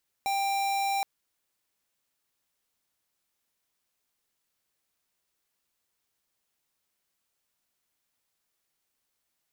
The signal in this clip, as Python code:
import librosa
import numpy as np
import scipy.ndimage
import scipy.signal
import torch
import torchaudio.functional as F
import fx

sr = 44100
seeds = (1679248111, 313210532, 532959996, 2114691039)

y = fx.tone(sr, length_s=0.77, wave='square', hz=790.0, level_db=-28.0)